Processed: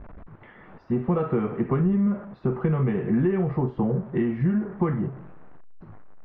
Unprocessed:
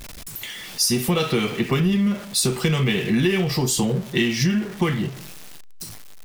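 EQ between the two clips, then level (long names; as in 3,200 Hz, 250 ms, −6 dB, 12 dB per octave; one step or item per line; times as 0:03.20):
low-pass filter 1,400 Hz 24 dB per octave
high-frequency loss of the air 77 metres
−2.0 dB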